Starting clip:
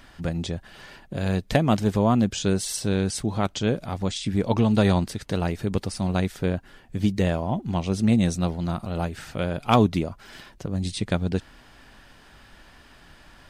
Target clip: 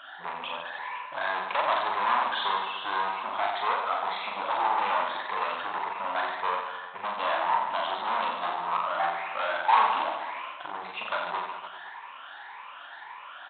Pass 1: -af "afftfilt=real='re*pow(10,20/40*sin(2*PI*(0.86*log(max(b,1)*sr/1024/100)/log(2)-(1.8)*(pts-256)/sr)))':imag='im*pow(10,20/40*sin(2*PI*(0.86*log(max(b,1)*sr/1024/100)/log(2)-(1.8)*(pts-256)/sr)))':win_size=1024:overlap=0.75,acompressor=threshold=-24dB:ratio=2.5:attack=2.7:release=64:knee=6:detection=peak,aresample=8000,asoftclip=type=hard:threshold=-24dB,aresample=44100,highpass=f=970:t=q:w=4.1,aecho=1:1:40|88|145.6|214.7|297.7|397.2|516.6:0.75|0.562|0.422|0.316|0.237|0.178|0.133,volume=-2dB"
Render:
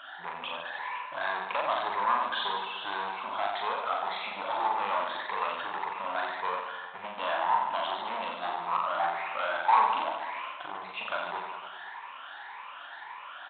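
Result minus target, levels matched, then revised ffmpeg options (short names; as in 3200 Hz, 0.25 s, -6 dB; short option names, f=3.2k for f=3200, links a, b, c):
compressor: peak gain reduction +11.5 dB
-af "afftfilt=real='re*pow(10,20/40*sin(2*PI*(0.86*log(max(b,1)*sr/1024/100)/log(2)-(1.8)*(pts-256)/sr)))':imag='im*pow(10,20/40*sin(2*PI*(0.86*log(max(b,1)*sr/1024/100)/log(2)-(1.8)*(pts-256)/sr)))':win_size=1024:overlap=0.75,aresample=8000,asoftclip=type=hard:threshold=-24dB,aresample=44100,highpass=f=970:t=q:w=4.1,aecho=1:1:40|88|145.6|214.7|297.7|397.2|516.6:0.75|0.562|0.422|0.316|0.237|0.178|0.133,volume=-2dB"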